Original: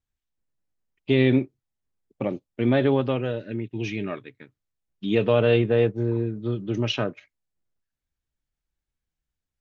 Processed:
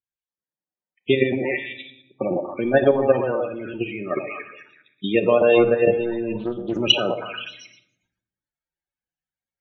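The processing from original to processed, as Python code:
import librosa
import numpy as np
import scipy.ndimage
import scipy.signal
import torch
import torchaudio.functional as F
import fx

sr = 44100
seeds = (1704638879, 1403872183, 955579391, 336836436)

y = fx.highpass(x, sr, hz=450.0, slope=6)
y = fx.echo_stepped(y, sr, ms=119, hz=640.0, octaves=0.7, feedback_pct=70, wet_db=-3)
y = fx.transient(y, sr, attack_db=8, sustain_db=12)
y = fx.level_steps(y, sr, step_db=10)
y = fx.spec_topn(y, sr, count=32)
y = fx.room_shoebox(y, sr, seeds[0], volume_m3=1900.0, walls='furnished', distance_m=0.98)
y = fx.rider(y, sr, range_db=4, speed_s=2.0)
y = fx.doppler_dist(y, sr, depth_ms=0.26, at=(6.39, 6.8))
y = F.gain(torch.from_numpy(y), 5.0).numpy()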